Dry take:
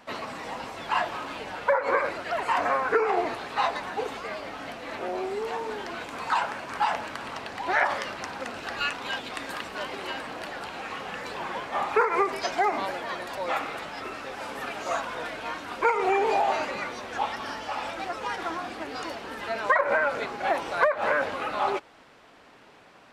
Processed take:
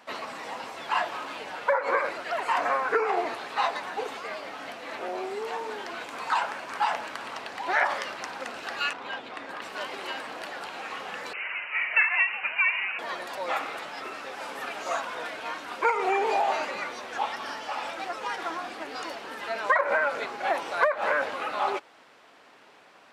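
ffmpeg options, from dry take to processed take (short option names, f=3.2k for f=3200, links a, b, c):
-filter_complex "[0:a]asettb=1/sr,asplit=3[a][b][c];[a]atrim=end=8.934[d];[b]atrim=start=8.93:end=9.62,asetpts=PTS-STARTPTS,afade=t=in:d=0.004:c=qsin,afade=t=out:st=0.686:d=0.004:c=qsin,lowpass=f=1.6k:p=1[e];[c]atrim=start=9.616[f];[d][e]acrossfade=d=0.004:c1=hsin:c2=qsin[g];[g][f]acrossfade=d=0.004:c1=qsin:c2=hsin,asettb=1/sr,asplit=3[h][i][j];[h]atrim=end=11.334[k];[i]atrim=start=11.33:end=12.99,asetpts=PTS-STARTPTS,afade=t=in:d=0.004:c=qsin,afade=t=out:st=1.656:d=0.004:c=qsin,lowpass=f=2.6k:t=q:w=0.5098,lowpass=f=2.6k:t=q:w=0.6013,lowpass=f=2.6k:t=q:w=0.9,lowpass=f=2.6k:t=q:w=2.563,afreqshift=-3100[l];[j]atrim=start=12.986[m];[k][l]acrossfade=d=0.004:c1=hsin:c2=qsin[n];[n][m]acrossfade=d=0.004:c1=qsin:c2=hsin,highpass=f=390:p=1"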